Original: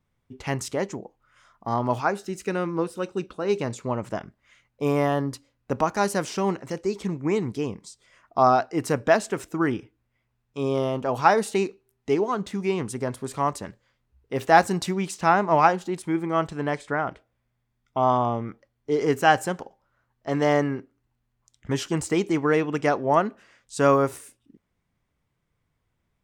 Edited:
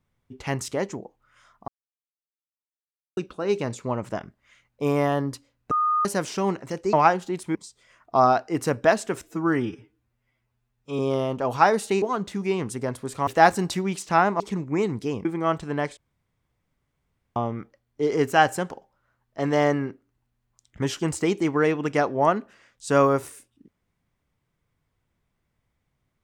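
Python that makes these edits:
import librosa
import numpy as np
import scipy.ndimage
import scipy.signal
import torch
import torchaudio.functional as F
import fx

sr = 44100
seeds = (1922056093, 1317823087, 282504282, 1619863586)

y = fx.edit(x, sr, fx.silence(start_s=1.68, length_s=1.49),
    fx.bleep(start_s=5.71, length_s=0.34, hz=1230.0, db=-19.0),
    fx.swap(start_s=6.93, length_s=0.85, other_s=15.52, other_length_s=0.62),
    fx.stretch_span(start_s=9.45, length_s=1.18, factor=1.5),
    fx.cut(start_s=11.66, length_s=0.55),
    fx.cut(start_s=13.46, length_s=0.93),
    fx.room_tone_fill(start_s=16.86, length_s=1.39), tone=tone)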